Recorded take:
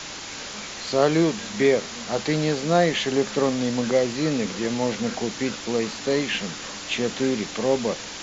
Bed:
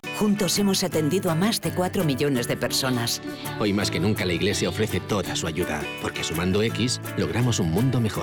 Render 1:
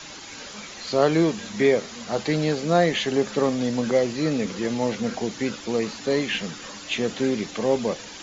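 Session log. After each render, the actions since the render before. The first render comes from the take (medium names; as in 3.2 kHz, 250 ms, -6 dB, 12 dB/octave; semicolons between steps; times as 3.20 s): noise reduction 8 dB, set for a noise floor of -36 dBFS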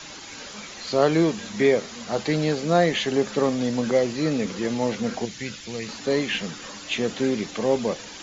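5.25–5.89 s: high-order bell 550 Hz -9.5 dB 2.9 oct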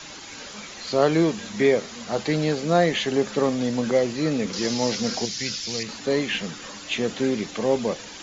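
4.53–5.83 s: peaking EQ 5.1 kHz +14 dB 0.92 oct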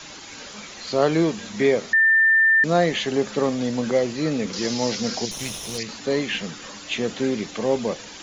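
1.93–2.64 s: bleep 1.79 kHz -13 dBFS; 5.31–5.78 s: comb filter that takes the minimum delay 0.32 ms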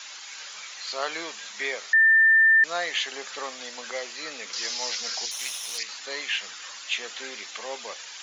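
high-pass 1.2 kHz 12 dB/octave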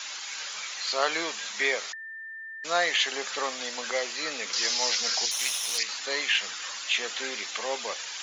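compressor with a negative ratio -26 dBFS, ratio -0.5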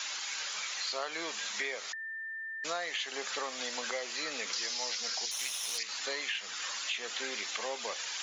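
compression 6:1, threshold -33 dBFS, peak gain reduction 13 dB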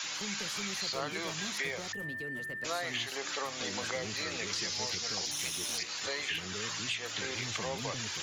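add bed -21.5 dB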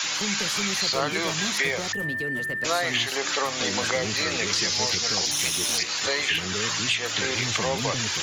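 trim +10.5 dB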